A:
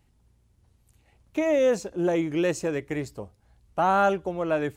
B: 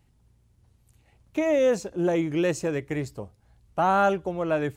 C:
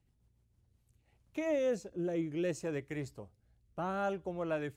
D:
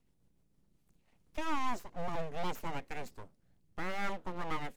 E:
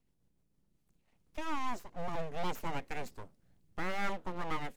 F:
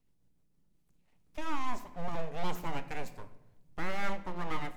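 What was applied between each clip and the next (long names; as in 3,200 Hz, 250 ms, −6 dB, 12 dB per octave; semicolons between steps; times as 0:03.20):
parametric band 130 Hz +4 dB 0.77 octaves
rotating-speaker cabinet horn 7 Hz, later 0.6 Hz, at 0:00.28; level −8.5 dB
full-wave rectification; level +1.5 dB
speech leveller 2 s
rectangular room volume 380 cubic metres, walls mixed, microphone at 0.39 metres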